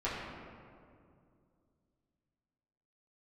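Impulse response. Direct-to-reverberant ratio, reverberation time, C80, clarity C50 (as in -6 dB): -10.0 dB, 2.3 s, 1.5 dB, 0.0 dB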